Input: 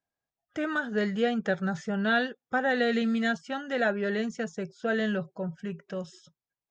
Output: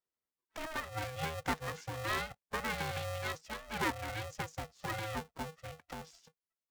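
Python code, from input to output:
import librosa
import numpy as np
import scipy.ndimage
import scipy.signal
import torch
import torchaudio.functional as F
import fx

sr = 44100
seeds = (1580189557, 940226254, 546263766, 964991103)

y = fx.hpss(x, sr, part='harmonic', gain_db=-8)
y = y * np.sign(np.sin(2.0 * np.pi * 320.0 * np.arange(len(y)) / sr))
y = F.gain(torch.from_numpy(y), -4.5).numpy()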